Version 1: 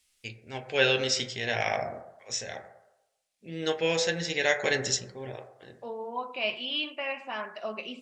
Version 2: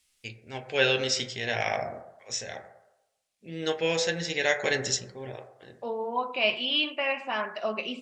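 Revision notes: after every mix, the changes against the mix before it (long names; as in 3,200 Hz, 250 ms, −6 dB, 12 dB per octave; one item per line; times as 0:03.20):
second voice +5.0 dB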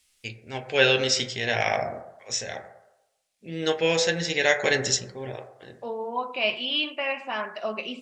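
first voice +4.0 dB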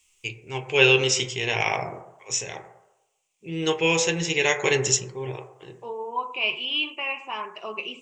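second voice −3.5 dB
master: add EQ curve with evenly spaced ripples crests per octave 0.71, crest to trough 12 dB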